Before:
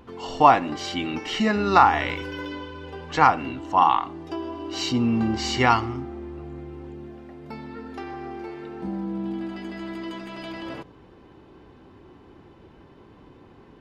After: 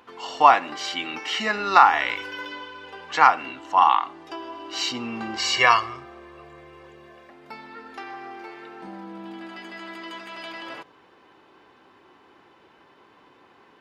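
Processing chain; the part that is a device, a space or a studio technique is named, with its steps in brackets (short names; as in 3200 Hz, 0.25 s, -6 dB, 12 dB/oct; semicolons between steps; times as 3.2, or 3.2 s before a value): filter by subtraction (in parallel: LPF 1400 Hz 12 dB/oct + phase invert); 5.38–7.3 on the sum: comb 1.8 ms, depth 81%; gain +1.5 dB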